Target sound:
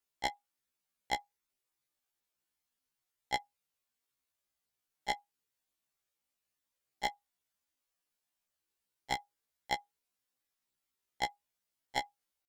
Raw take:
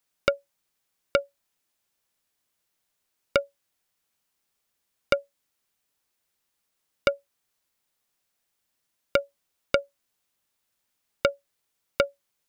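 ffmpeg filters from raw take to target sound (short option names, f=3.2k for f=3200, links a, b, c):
-af "asetrate=64194,aresample=44100,atempo=0.686977,afftfilt=real='re*1.73*eq(mod(b,3),0)':imag='im*1.73*eq(mod(b,3),0)':win_size=2048:overlap=0.75,volume=-5dB"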